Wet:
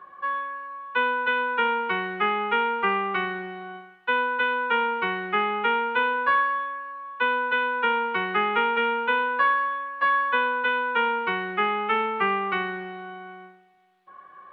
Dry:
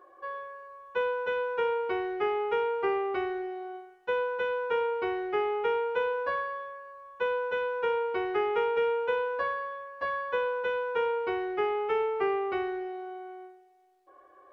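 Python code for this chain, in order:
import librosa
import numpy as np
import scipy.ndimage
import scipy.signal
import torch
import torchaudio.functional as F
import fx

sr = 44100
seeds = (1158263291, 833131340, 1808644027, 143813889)

y = fx.octave_divider(x, sr, octaves=1, level_db=0.0)
y = fx.band_shelf(y, sr, hz=1900.0, db=14.0, octaves=2.4)
y = y * librosa.db_to_amplitude(-2.5)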